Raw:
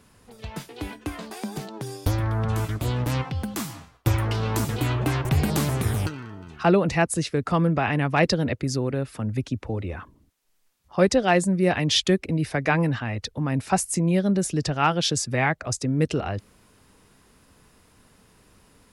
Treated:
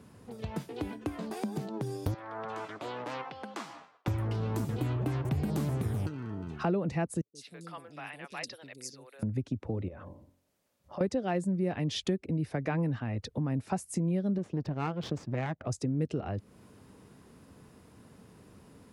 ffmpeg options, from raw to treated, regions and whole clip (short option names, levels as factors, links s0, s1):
-filter_complex "[0:a]asettb=1/sr,asplit=3[s0][s1][s2];[s0]atrim=end=2.144[s3];[s1]atrim=start=2.14:end=4.08,asetpts=PTS-STARTPTS,afade=t=in:d=0.004:c=qsin,afade=t=out:st=1.936:d=0.004:c=qsin,highpass=700,lowpass=6000,highshelf=f=3800:g=-6.5[s4];[s2]atrim=start=4.076[s5];[s3][s4]acrossfade=d=0.004:c1=hsin:c2=qsin[s6];[s6][s5]acrossfade=d=0.004:c1=qsin:c2=hsin,asettb=1/sr,asplit=3[s7][s8][s9];[s7]atrim=end=7.214[s10];[s8]atrim=start=7.21:end=9.23,asetpts=PTS-STARTPTS,afade=t=in:d=0.004:c=qsin,afade=t=out:st=2.016:d=0.004:c=qsin,aderivative,acrossover=split=440|4000[s11][s12][s13];[s13]adelay=140[s14];[s12]adelay=200[s15];[s11][s15][s14]amix=inputs=3:normalize=0,atrim=end_sample=89082[s16];[s9]atrim=start=9.226[s17];[s10][s16]acrossfade=d=0.004:c1=hsin:c2=qsin[s18];[s18][s17]acrossfade=d=0.004:c1=qsin:c2=hsin,asettb=1/sr,asplit=3[s19][s20][s21];[s19]atrim=end=9.884[s22];[s20]atrim=start=9.88:end=11.01,asetpts=PTS-STARTPTS,afade=t=in:d=0.004:c=qsin,afade=t=out:st=1.126:d=0.004:c=qsin,bandreject=f=45.22:t=h:w=4,bandreject=f=90.44:t=h:w=4,bandreject=f=135.66:t=h:w=4,bandreject=f=180.88:t=h:w=4,bandreject=f=226.1:t=h:w=4,bandreject=f=271.32:t=h:w=4,bandreject=f=316.54:t=h:w=4,bandreject=f=361.76:t=h:w=4,bandreject=f=406.98:t=h:w=4,bandreject=f=452.2:t=h:w=4,bandreject=f=497.42:t=h:w=4,bandreject=f=542.64:t=h:w=4,bandreject=f=587.86:t=h:w=4,bandreject=f=633.08:t=h:w=4,bandreject=f=678.3:t=h:w=4,bandreject=f=723.52:t=h:w=4,bandreject=f=768.74:t=h:w=4,bandreject=f=813.96:t=h:w=4,bandreject=f=859.18:t=h:w=4,bandreject=f=904.4:t=h:w=4,bandreject=f=949.62:t=h:w=4,bandreject=f=994.84:t=h:w=4,bandreject=f=1040.06:t=h:w=4,acompressor=threshold=0.01:ratio=10:attack=3.2:release=140:knee=1:detection=peak,equalizer=f=580:t=o:w=0.21:g=13.5[s23];[s21]atrim=start=11.006[s24];[s22][s23]acrossfade=d=0.004:c1=hsin:c2=qsin[s25];[s25][s24]acrossfade=d=0.004:c1=qsin:c2=hsin,asettb=1/sr,asplit=3[s26][s27][s28];[s26]atrim=end=14.384[s29];[s27]atrim=start=14.38:end=15.66,asetpts=PTS-STARTPTS,afade=t=in:d=0.004:c=qsin,afade=t=out:st=1.276:d=0.004:c=qsin,aeval=exprs='if(lt(val(0),0),0.251*val(0),val(0))':c=same,adynamicsmooth=sensitivity=1:basefreq=3500[s30];[s28]atrim=start=15.656[s31];[s29][s30]acrossfade=d=0.004:c1=hsin:c2=qsin[s32];[s32][s31]acrossfade=d=0.004:c1=qsin:c2=hsin,highpass=95,tiltshelf=f=820:g=6,acompressor=threshold=0.02:ratio=2.5"